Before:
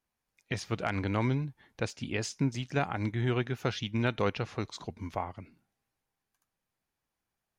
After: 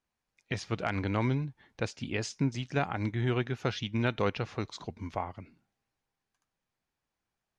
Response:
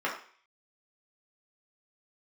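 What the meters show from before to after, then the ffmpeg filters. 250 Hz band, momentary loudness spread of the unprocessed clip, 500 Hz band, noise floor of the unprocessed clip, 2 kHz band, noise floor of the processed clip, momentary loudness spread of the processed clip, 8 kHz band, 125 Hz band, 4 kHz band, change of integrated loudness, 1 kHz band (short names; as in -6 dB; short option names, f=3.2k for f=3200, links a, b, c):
0.0 dB, 9 LU, 0.0 dB, under -85 dBFS, 0.0 dB, under -85 dBFS, 9 LU, -2.0 dB, 0.0 dB, 0.0 dB, 0.0 dB, 0.0 dB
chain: -af "lowpass=7.4k"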